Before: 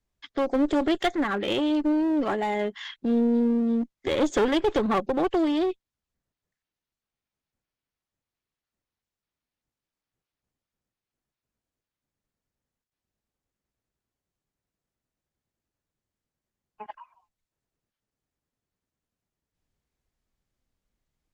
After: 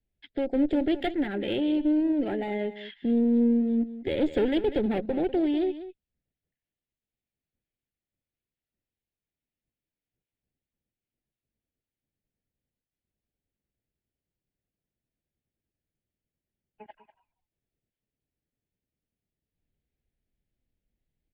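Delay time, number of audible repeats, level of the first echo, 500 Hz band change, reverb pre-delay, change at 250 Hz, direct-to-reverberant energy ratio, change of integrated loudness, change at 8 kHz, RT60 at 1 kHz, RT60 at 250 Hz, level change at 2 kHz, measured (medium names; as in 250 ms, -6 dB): 195 ms, 1, -13.5 dB, -2.5 dB, no reverb, -0.5 dB, no reverb, -1.5 dB, no reading, no reverb, no reverb, -6.0 dB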